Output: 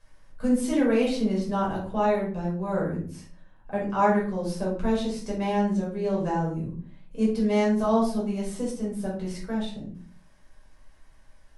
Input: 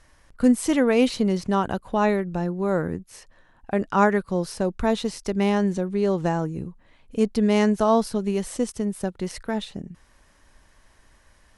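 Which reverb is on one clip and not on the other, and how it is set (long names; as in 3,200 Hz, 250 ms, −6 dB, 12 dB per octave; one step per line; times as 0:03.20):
rectangular room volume 420 cubic metres, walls furnished, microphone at 5.4 metres
level −13 dB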